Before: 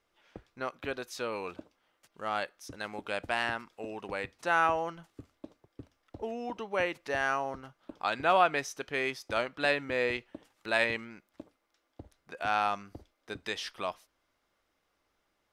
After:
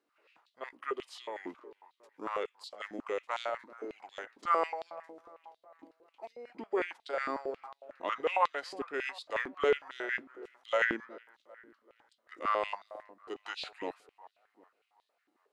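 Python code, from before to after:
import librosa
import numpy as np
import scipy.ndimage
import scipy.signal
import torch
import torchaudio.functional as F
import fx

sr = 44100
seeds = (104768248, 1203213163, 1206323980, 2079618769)

y = fx.echo_wet_lowpass(x, sr, ms=388, feedback_pct=51, hz=1600.0, wet_db=-17)
y = fx.formant_shift(y, sr, semitones=-4)
y = fx.filter_held_highpass(y, sr, hz=11.0, low_hz=290.0, high_hz=3700.0)
y = F.gain(torch.from_numpy(y), -6.5).numpy()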